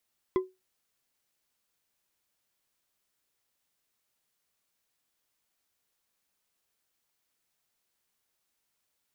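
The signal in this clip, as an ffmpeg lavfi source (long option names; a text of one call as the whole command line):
ffmpeg -f lavfi -i "aevalsrc='0.112*pow(10,-3*t/0.22)*sin(2*PI*373*t)+0.0376*pow(10,-3*t/0.108)*sin(2*PI*1028.4*t)+0.0126*pow(10,-3*t/0.068)*sin(2*PI*2015.7*t)+0.00422*pow(10,-3*t/0.048)*sin(2*PI*3332*t)+0.00141*pow(10,-3*t/0.036)*sin(2*PI*4975.8*t)':duration=0.89:sample_rate=44100" out.wav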